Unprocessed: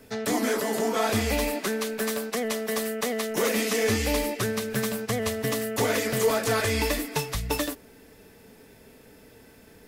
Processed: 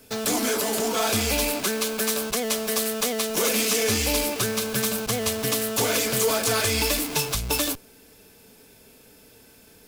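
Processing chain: in parallel at -6 dB: Schmitt trigger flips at -39 dBFS; on the sum: treble shelf 2.3 kHz +9.5 dB; band-stop 1.9 kHz, Q 5.6; trim -3 dB

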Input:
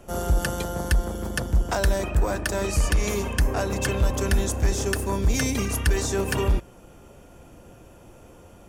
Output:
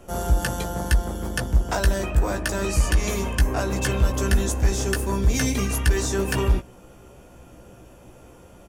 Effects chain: doubling 16 ms -5.5 dB

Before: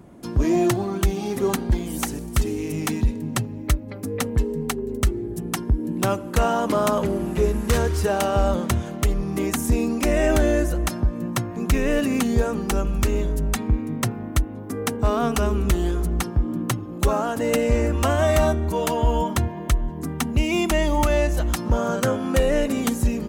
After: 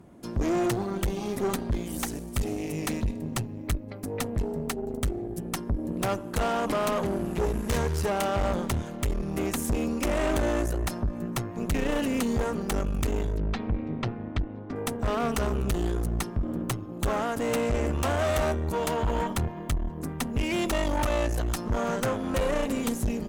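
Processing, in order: valve stage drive 22 dB, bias 0.8; 13.37–14.76 s: low-pass 4.3 kHz 24 dB/octave

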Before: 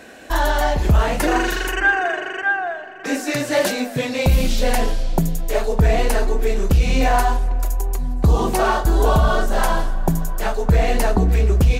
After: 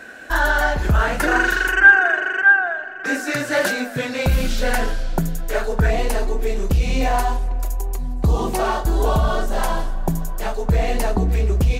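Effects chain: peaking EQ 1.5 kHz +12 dB 0.45 oct, from 5.90 s -2.5 dB; trim -2.5 dB

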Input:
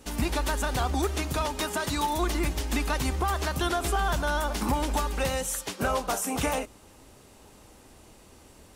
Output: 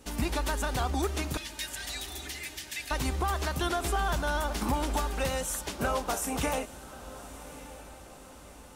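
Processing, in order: 1.37–2.91 s: elliptic high-pass 1.7 kHz; echo that smears into a reverb 1172 ms, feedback 51%, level -15.5 dB; trim -2.5 dB

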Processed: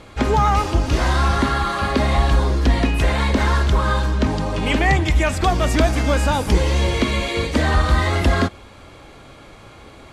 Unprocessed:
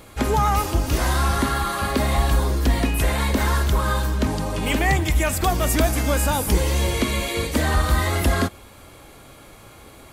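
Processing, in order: low-pass 5.4 kHz 12 dB/octave; trim +3 dB

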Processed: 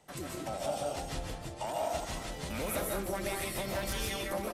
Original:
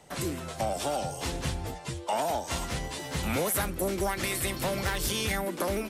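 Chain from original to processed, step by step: tempo 1.3×; algorithmic reverb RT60 0.51 s, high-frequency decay 0.45×, pre-delay 105 ms, DRR -1.5 dB; trim -8.5 dB

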